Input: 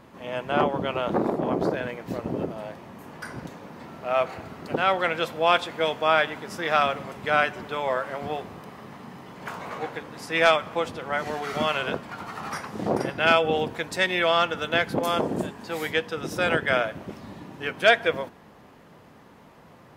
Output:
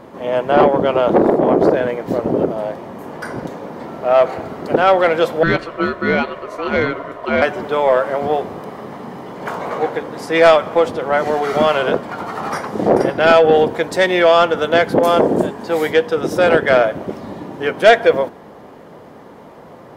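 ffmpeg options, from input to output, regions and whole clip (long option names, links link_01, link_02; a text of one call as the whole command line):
ffmpeg -i in.wav -filter_complex "[0:a]asettb=1/sr,asplit=3[link_01][link_02][link_03];[link_01]atrim=end=5.434[link_04];[link_02]atrim=start=5.43:end=7.42,asetpts=PTS-STARTPTS,afade=type=in:duration=0.004:curve=qsin,afade=type=out:start_time=1.986:duration=0.004:curve=qsin,highshelf=frequency=2400:gain=-10.5,bandreject=frequency=780:width=7.6,aeval=exprs='val(0)*sin(2*PI*830*n/s)':channel_layout=same[link_05];[link_03]atrim=start=7.416[link_06];[link_04][link_05]acrossfade=duration=0.004:curve1=hsin:curve2=qsin[link_07];[link_07][link_06]acrossfade=duration=0.004:curve1=qsin:curve2=hsin,equalizer=frequency=490:width=0.57:gain=10,bandreject=frequency=2600:width=17,acontrast=56,volume=-1dB" out.wav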